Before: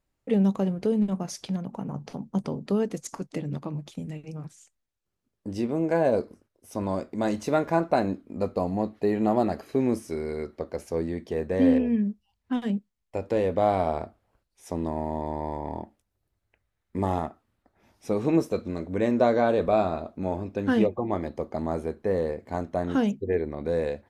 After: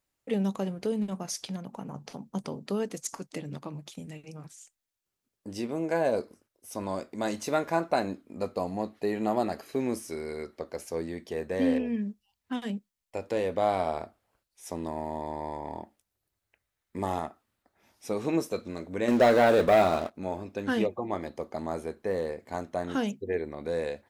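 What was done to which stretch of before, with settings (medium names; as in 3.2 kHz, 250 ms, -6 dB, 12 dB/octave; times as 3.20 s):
19.08–20.15 s: waveshaping leveller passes 2
whole clip: tilt EQ +2 dB/octave; trim -2 dB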